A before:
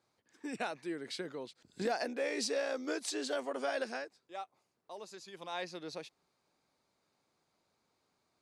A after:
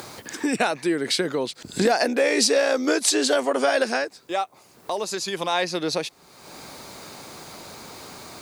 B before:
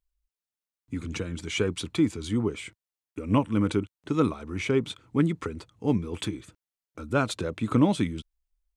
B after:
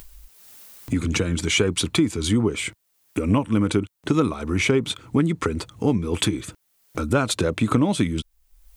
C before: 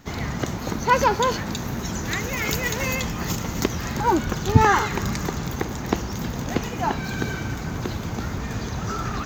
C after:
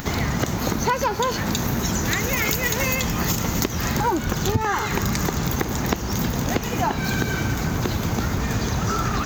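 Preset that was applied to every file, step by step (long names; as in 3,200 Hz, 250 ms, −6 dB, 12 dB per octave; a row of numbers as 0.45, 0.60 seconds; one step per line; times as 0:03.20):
in parallel at 0 dB: upward compression, threshold −24 dBFS
on the sum: high-shelf EQ 9,200 Hz +8.5 dB
downward compressor 10 to 1, threshold −18 dBFS
loudness normalisation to −23 LKFS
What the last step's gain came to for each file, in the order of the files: +6.5, +3.0, 0.0 decibels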